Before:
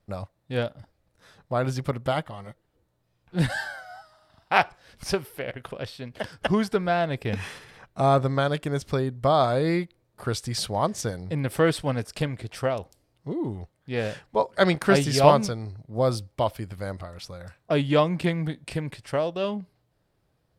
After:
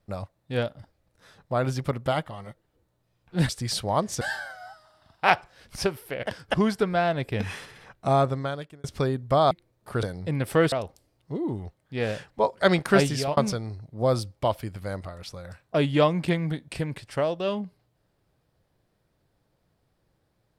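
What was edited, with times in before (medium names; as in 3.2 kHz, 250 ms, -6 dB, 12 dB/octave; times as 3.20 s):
5.55–6.20 s: delete
8.00–8.77 s: fade out
9.44–9.83 s: delete
10.35–11.07 s: move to 3.49 s
11.76–12.68 s: delete
14.90–15.33 s: fade out equal-power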